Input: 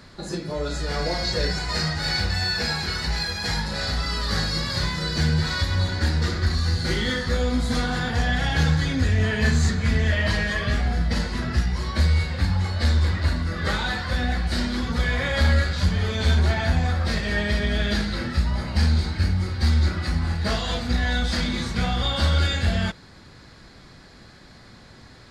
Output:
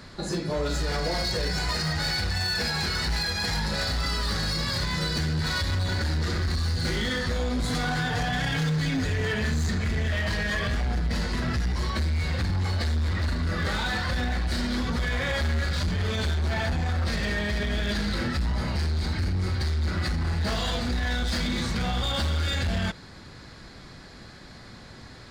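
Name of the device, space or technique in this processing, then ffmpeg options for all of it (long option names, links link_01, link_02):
limiter into clipper: -filter_complex "[0:a]asettb=1/sr,asplit=3[link_01][link_02][link_03];[link_01]atrim=end=7.634[link_04];[link_02]atrim=start=7.63:end=9.34,asetpts=PTS-STARTPTS,afade=type=in:duration=0.004:curve=qsin,afade=type=out:start_time=1.706:duration=0.004:curve=qsin,aecho=1:1:6.8:1,atrim=end_sample=75411[link_05];[link_03]atrim=start=9.336[link_06];[link_04][link_05]acrossfade=duration=0.004:curve1=hsin:curve2=qsin[link_07];[link_07][link_06]acrossfade=duration=0.004:curve1=qsin:curve2=hsin,alimiter=limit=-19dB:level=0:latency=1:release=66,asoftclip=type=hard:threshold=-24.5dB,volume=2dB"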